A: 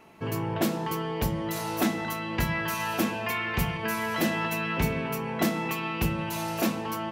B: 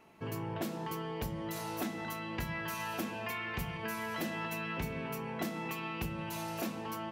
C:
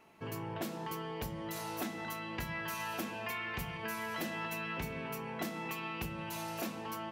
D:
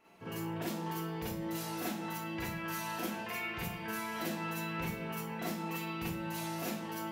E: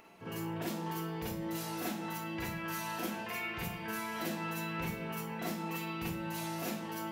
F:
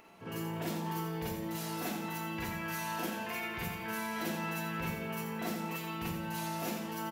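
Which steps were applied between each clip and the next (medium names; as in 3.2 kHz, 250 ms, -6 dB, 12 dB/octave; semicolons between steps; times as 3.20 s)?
compression 3:1, threshold -27 dBFS, peak gain reduction 5.5 dB; trim -7 dB
bass shelf 480 Hz -3.5 dB
Schroeder reverb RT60 0.33 s, combs from 33 ms, DRR -7 dB; trim -6 dB
upward compressor, threshold -53 dBFS
feedback delay 86 ms, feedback 41%, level -7.5 dB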